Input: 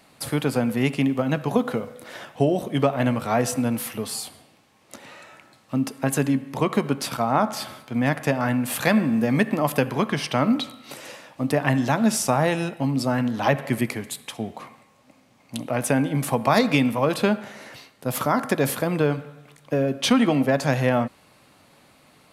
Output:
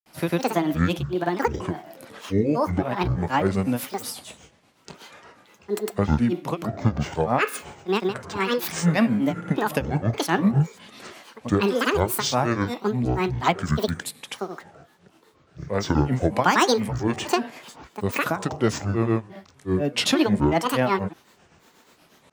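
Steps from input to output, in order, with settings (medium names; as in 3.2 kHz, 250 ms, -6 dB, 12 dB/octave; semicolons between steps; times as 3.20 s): granulator 202 ms, grains 8.3 per s, pitch spread up and down by 12 st; trim +1 dB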